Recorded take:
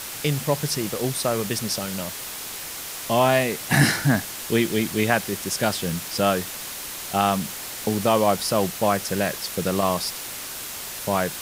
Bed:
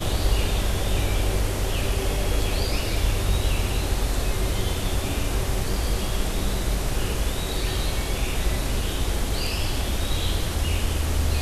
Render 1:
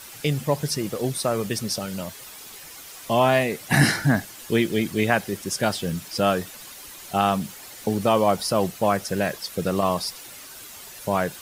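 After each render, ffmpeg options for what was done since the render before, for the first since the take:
-af "afftdn=nr=10:nf=-34"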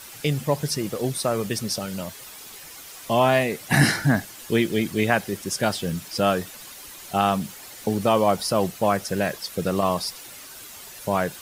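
-af anull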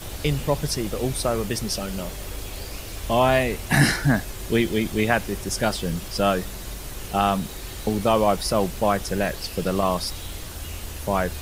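-filter_complex "[1:a]volume=-11dB[a];[0:a][a]amix=inputs=2:normalize=0"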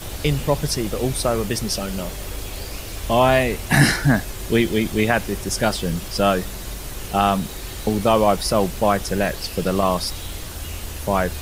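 -af "volume=3dB,alimiter=limit=-3dB:level=0:latency=1"

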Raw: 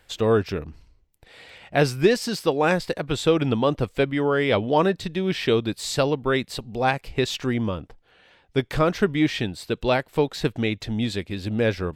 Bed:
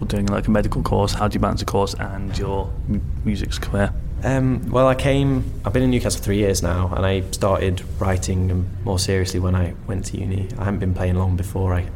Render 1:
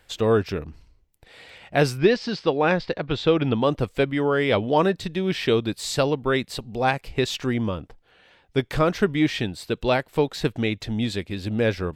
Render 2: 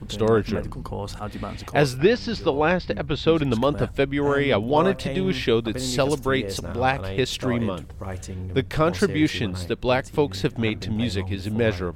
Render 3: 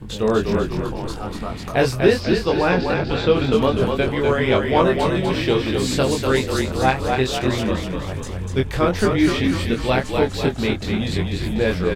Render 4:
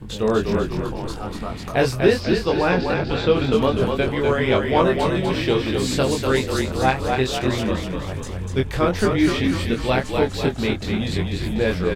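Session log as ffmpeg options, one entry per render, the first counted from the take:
-filter_complex "[0:a]asplit=3[a][b][c];[a]afade=t=out:st=1.97:d=0.02[d];[b]lowpass=f=4.8k:w=0.5412,lowpass=f=4.8k:w=1.3066,afade=t=in:st=1.97:d=0.02,afade=t=out:st=3.6:d=0.02[e];[c]afade=t=in:st=3.6:d=0.02[f];[d][e][f]amix=inputs=3:normalize=0"
-filter_complex "[1:a]volume=-12.5dB[a];[0:a][a]amix=inputs=2:normalize=0"
-filter_complex "[0:a]asplit=2[a][b];[b]adelay=23,volume=-3dB[c];[a][c]amix=inputs=2:normalize=0,asplit=8[d][e][f][g][h][i][j][k];[e]adelay=246,afreqshift=-37,volume=-4.5dB[l];[f]adelay=492,afreqshift=-74,volume=-9.7dB[m];[g]adelay=738,afreqshift=-111,volume=-14.9dB[n];[h]adelay=984,afreqshift=-148,volume=-20.1dB[o];[i]adelay=1230,afreqshift=-185,volume=-25.3dB[p];[j]adelay=1476,afreqshift=-222,volume=-30.5dB[q];[k]adelay=1722,afreqshift=-259,volume=-35.7dB[r];[d][l][m][n][o][p][q][r]amix=inputs=8:normalize=0"
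-af "volume=-1dB"

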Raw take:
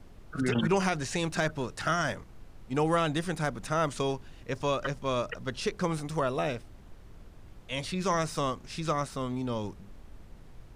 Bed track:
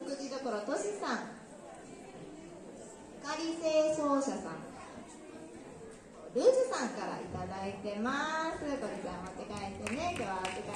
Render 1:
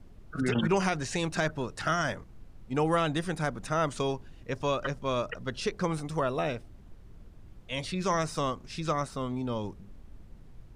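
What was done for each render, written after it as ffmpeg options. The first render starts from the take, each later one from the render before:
-af "afftdn=nr=6:nf=-51"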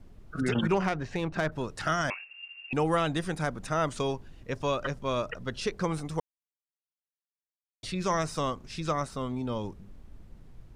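-filter_complex "[0:a]asettb=1/sr,asplit=3[a][b][c];[a]atrim=end=0.744[d];[b]atrim=start=0.74:end=1.52,asetpts=PTS-STARTPTS,afade=t=in:d=0.004:c=qsin,afade=t=out:st=0.776:d=0.004:c=qsin,adynamicsmooth=sensitivity=1.5:basefreq=2.2k[e];[c]atrim=start=1.516[f];[d][e]acrossfade=d=0.004:c1=hsin:c2=qsin[g];[g][f]acrossfade=d=0.004:c1=qsin:c2=hsin,asettb=1/sr,asplit=3[h][i][j];[h]atrim=end=2.104[k];[i]atrim=start=2.1:end=2.73,asetpts=PTS-STARTPTS,afade=t=in:d=0.004:c=qsin,afade=t=out:st=0.626:d=0.004:c=qsin,lowpass=f=2.4k:t=q:w=0.5098,lowpass=f=2.4k:t=q:w=0.6013,lowpass=f=2.4k:t=q:w=0.9,lowpass=f=2.4k:t=q:w=2.563,afreqshift=-2800[l];[j]atrim=start=2.726[m];[k][l]acrossfade=d=0.004:c1=hsin:c2=qsin[n];[n][m]acrossfade=d=0.004:c1=qsin:c2=hsin,asplit=3[o][p][q];[o]atrim=end=6.2,asetpts=PTS-STARTPTS,afade=t=out:st=6.196:d=0.004:c=hsin[r];[p]atrim=start=6.2:end=7.83,asetpts=PTS-STARTPTS,volume=0[s];[q]atrim=start=7.83,asetpts=PTS-STARTPTS,afade=t=in:d=0.004:c=hsin[t];[r][s][t]concat=n=3:v=0:a=1"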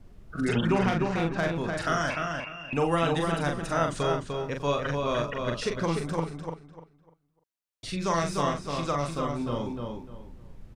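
-filter_complex "[0:a]asplit=2[a][b];[b]adelay=42,volume=-4.5dB[c];[a][c]amix=inputs=2:normalize=0,asplit=2[d][e];[e]adelay=299,lowpass=f=3.9k:p=1,volume=-4dB,asplit=2[f][g];[g]adelay=299,lowpass=f=3.9k:p=1,volume=0.26,asplit=2[h][i];[i]adelay=299,lowpass=f=3.9k:p=1,volume=0.26,asplit=2[j][k];[k]adelay=299,lowpass=f=3.9k:p=1,volume=0.26[l];[d][f][h][j][l]amix=inputs=5:normalize=0"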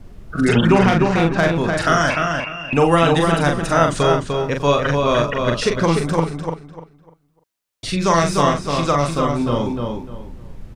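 -af "volume=11dB,alimiter=limit=-2dB:level=0:latency=1"

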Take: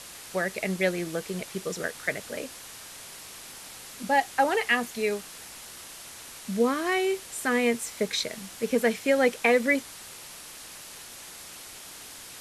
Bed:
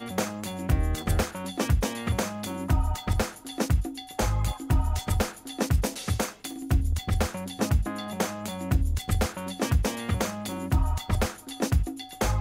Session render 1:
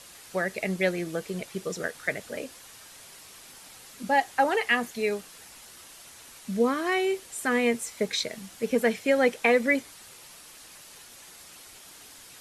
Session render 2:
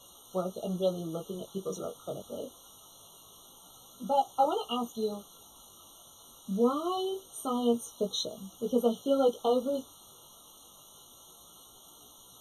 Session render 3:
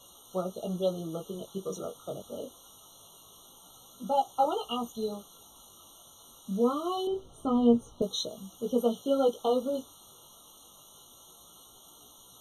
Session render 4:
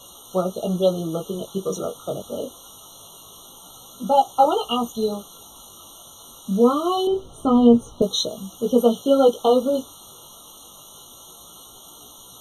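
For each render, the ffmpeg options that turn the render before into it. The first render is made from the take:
-af "afftdn=nr=6:nf=-44"
-af "flanger=delay=16:depth=5.1:speed=0.24,afftfilt=real='re*eq(mod(floor(b*sr/1024/1400),2),0)':imag='im*eq(mod(floor(b*sr/1024/1400),2),0)':win_size=1024:overlap=0.75"
-filter_complex "[0:a]asettb=1/sr,asplit=3[a][b][c];[a]atrim=end=4.334[d];[b]atrim=start=4.33:end=5.08,asetpts=PTS-STARTPTS,afade=t=in:d=0.004:c=qsin,afade=t=out:st=0.746:d=0.004:c=qsin,asubboost=boost=7:cutoff=150[e];[c]atrim=start=5.076[f];[d][e]acrossfade=d=0.004:c1=hsin:c2=qsin[g];[g][f]acrossfade=d=0.004:c1=qsin:c2=hsin,asettb=1/sr,asplit=3[h][i][j];[h]atrim=end=7.074[k];[i]atrim=start=7.07:end=8.02,asetpts=PTS-STARTPTS,afade=t=in:d=0.004:c=qsin,afade=t=out:st=0.946:d=0.004:c=qsin,aemphasis=mode=reproduction:type=riaa[l];[j]atrim=start=8.016[m];[k][l]acrossfade=d=0.004:c1=hsin:c2=qsin[n];[n][m]acrossfade=d=0.004:c1=qsin:c2=hsin"
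-af "volume=10dB,alimiter=limit=-3dB:level=0:latency=1"

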